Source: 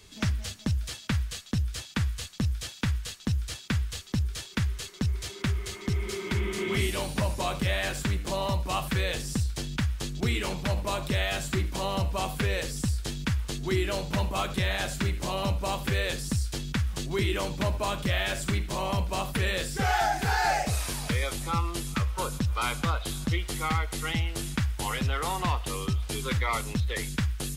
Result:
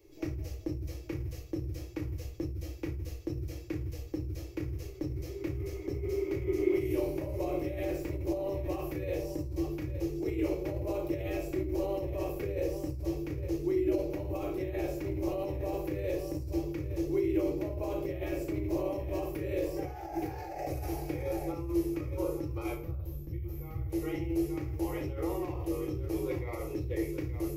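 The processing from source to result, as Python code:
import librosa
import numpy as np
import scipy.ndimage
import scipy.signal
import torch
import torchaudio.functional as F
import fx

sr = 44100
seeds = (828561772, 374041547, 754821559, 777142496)

p1 = x + fx.echo_multitap(x, sr, ms=(62, 879), db=(-12.0, -11.5), dry=0)
p2 = fx.spec_box(p1, sr, start_s=22.74, length_s=1.16, low_hz=240.0, high_hz=12000.0, gain_db=-14)
p3 = fx.bass_treble(p2, sr, bass_db=-4, treble_db=-12)
p4 = fx.room_shoebox(p3, sr, seeds[0], volume_m3=400.0, walls='furnished', distance_m=2.3)
p5 = fx.over_compress(p4, sr, threshold_db=-26.0, ratio=-1.0)
p6 = fx.curve_eq(p5, sr, hz=(130.0, 230.0, 320.0, 1500.0, 2300.0, 3500.0, 5600.0, 8900.0, 13000.0), db=(0, -23, 14, -18, -5, -17, 0, -8, 12))
y = p6 * 10.0 ** (-8.0 / 20.0)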